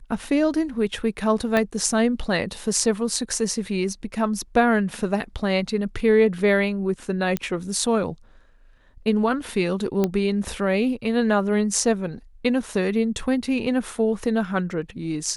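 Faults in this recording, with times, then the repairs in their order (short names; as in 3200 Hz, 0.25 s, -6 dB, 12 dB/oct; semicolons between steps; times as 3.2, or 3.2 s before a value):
1.57 pop -9 dBFS
7.37 pop -10 dBFS
10.04 pop -9 dBFS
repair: de-click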